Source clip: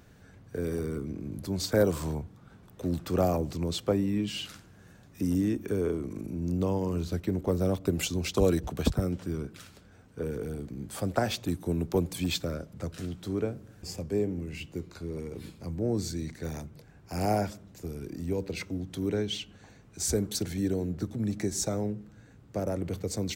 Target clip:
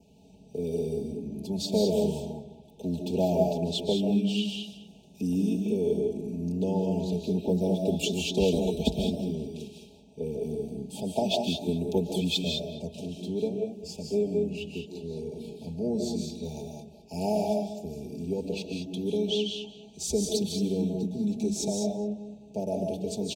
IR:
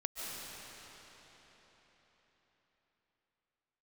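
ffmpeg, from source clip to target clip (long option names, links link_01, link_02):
-filter_complex "[0:a]highpass=65,highshelf=frequency=9600:gain=-9.5,aecho=1:1:4.7:0.89,adynamicequalizer=threshold=0.00178:dfrequency=3500:dqfactor=3.5:tfrequency=3500:tqfactor=3.5:attack=5:release=100:ratio=0.375:range=3.5:mode=boostabove:tftype=bell,asuperstop=centerf=1500:order=20:qfactor=1,asplit=2[link_01][link_02];[link_02]adelay=211,lowpass=frequency=2600:poles=1,volume=-13dB,asplit=2[link_03][link_04];[link_04]adelay=211,lowpass=frequency=2600:poles=1,volume=0.32,asplit=2[link_05][link_06];[link_06]adelay=211,lowpass=frequency=2600:poles=1,volume=0.32[link_07];[link_01][link_03][link_05][link_07]amix=inputs=4:normalize=0[link_08];[1:a]atrim=start_sample=2205,afade=type=out:start_time=0.27:duration=0.01,atrim=end_sample=12348[link_09];[link_08][link_09]afir=irnorm=-1:irlink=0"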